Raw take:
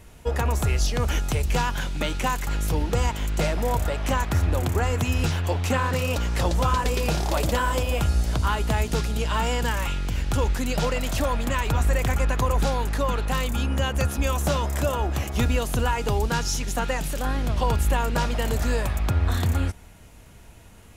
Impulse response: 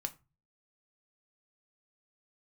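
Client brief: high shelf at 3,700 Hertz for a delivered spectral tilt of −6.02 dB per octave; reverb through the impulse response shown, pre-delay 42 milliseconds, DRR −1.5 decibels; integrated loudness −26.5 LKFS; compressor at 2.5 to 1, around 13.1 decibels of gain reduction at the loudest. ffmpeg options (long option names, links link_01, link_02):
-filter_complex "[0:a]highshelf=frequency=3700:gain=-9,acompressor=threshold=-39dB:ratio=2.5,asplit=2[link_01][link_02];[1:a]atrim=start_sample=2205,adelay=42[link_03];[link_02][link_03]afir=irnorm=-1:irlink=0,volume=2dB[link_04];[link_01][link_04]amix=inputs=2:normalize=0,volume=7.5dB"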